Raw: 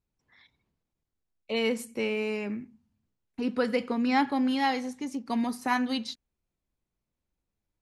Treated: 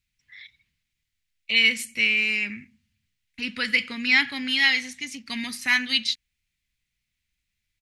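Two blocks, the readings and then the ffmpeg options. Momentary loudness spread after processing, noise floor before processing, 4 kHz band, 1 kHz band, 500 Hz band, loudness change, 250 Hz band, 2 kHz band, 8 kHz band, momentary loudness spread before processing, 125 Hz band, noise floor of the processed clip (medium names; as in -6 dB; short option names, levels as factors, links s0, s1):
13 LU, under -85 dBFS, +14.0 dB, -9.5 dB, -13.0 dB, +7.0 dB, -6.0 dB, +14.0 dB, +9.0 dB, 11 LU, no reading, -81 dBFS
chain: -af "firequalizer=gain_entry='entry(100,0);entry(380,-16);entry(870,-14);entry(2000,14);entry(5600,8);entry(12000,4)':delay=0.05:min_phase=1,volume=1.33"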